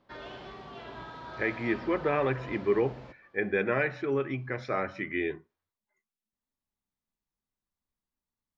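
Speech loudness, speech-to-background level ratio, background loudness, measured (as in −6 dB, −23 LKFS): −30.5 LKFS, 14.0 dB, −44.5 LKFS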